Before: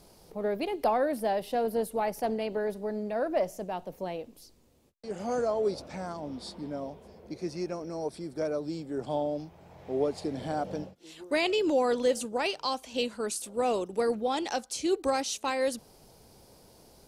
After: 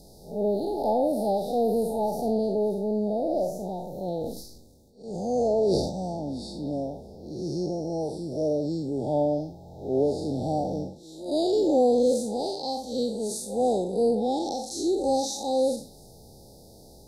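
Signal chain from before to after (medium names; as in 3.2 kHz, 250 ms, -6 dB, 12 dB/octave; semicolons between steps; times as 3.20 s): spectral blur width 140 ms; repeats whose band climbs or falls 102 ms, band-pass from 1.1 kHz, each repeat 1.4 oct, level -11 dB; 4.08–5.93 s: transient shaper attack -5 dB, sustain +10 dB; Chebyshev band-stop 850–3700 Hz, order 5; bass shelf 360 Hz +4 dB; trim +6.5 dB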